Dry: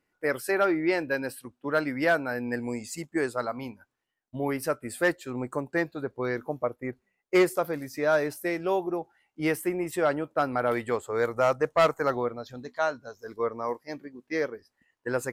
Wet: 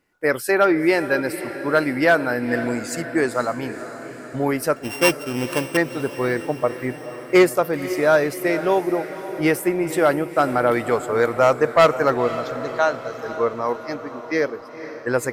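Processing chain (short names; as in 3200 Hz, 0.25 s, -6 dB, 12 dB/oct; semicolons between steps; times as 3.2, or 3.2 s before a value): 4.76–5.77 sample sorter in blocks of 16 samples; diffused feedback echo 0.504 s, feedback 61%, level -12.5 dB; gain +7.5 dB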